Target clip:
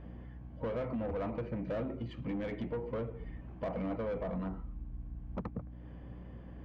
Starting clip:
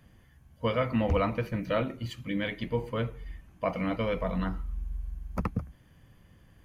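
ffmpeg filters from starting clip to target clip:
-filter_complex "[0:a]lowpass=2k,equalizer=f=1.5k:w=0.67:g=-12,acompressor=threshold=-42dB:ratio=4,asplit=2[a][b];[b]highpass=f=720:p=1,volume=24dB,asoftclip=type=tanh:threshold=-29dB[c];[a][c]amix=inputs=2:normalize=0,lowpass=f=1.1k:p=1,volume=-6dB,aeval=exprs='val(0)+0.00355*(sin(2*PI*60*n/s)+sin(2*PI*2*60*n/s)/2+sin(2*PI*3*60*n/s)/3+sin(2*PI*4*60*n/s)/4+sin(2*PI*5*60*n/s)/5)':c=same,volume=2dB"

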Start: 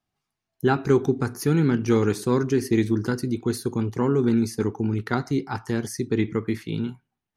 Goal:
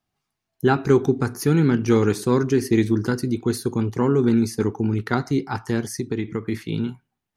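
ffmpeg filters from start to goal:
-filter_complex "[0:a]asplit=3[a][b][c];[a]afade=t=out:st=5.83:d=0.02[d];[b]acompressor=threshold=-24dB:ratio=6,afade=t=in:st=5.83:d=0.02,afade=t=out:st=6.51:d=0.02[e];[c]afade=t=in:st=6.51:d=0.02[f];[d][e][f]amix=inputs=3:normalize=0,volume=2.5dB"

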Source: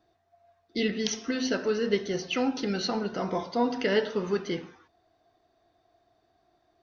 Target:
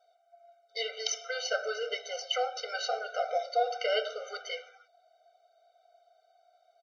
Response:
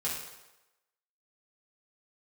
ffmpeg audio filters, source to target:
-af "aecho=1:1:1.3:0.82,aresample=22050,aresample=44100,afftfilt=real='re*eq(mod(floor(b*sr/1024/390),2),1)':imag='im*eq(mod(floor(b*sr/1024/390),2),1)':win_size=1024:overlap=0.75"

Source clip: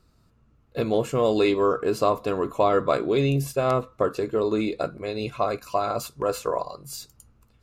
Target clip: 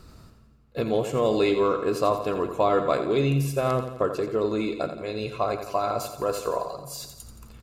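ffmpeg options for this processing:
-af "areverse,acompressor=mode=upward:threshold=-33dB:ratio=2.5,areverse,aecho=1:1:86|172|258|344|430|516|602:0.335|0.188|0.105|0.0588|0.0329|0.0184|0.0103,volume=-1.5dB"

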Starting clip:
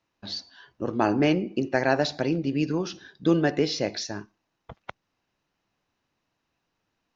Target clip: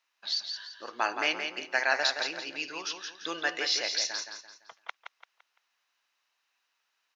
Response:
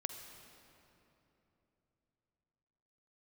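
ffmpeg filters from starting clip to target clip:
-filter_complex "[0:a]highpass=1.3k,asplit=2[a][b];[b]aecho=0:1:170|340|510|680:0.473|0.17|0.0613|0.0221[c];[a][c]amix=inputs=2:normalize=0,volume=3.5dB"

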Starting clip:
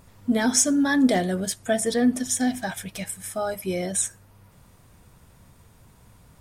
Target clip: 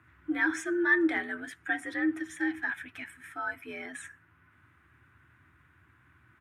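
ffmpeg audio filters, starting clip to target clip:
-af "afreqshift=65,firequalizer=gain_entry='entry(110,0);entry(180,-17);entry(330,0);entry(500,-16);entry(1500,12);entry(4600,-18)':delay=0.05:min_phase=1,volume=-6.5dB"

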